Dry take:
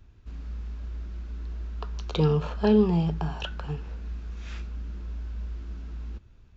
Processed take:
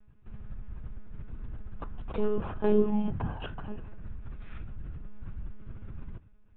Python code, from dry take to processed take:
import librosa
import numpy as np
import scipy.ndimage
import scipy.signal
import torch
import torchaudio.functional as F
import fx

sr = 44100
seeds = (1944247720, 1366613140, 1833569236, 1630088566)

y = fx.tracing_dist(x, sr, depth_ms=0.21)
y = fx.lpc_monotone(y, sr, seeds[0], pitch_hz=210.0, order=16)
y = scipy.signal.sosfilt(scipy.signal.butter(2, 2100.0, 'lowpass', fs=sr, output='sos'), y)
y = F.gain(torch.from_numpy(y), -3.0).numpy()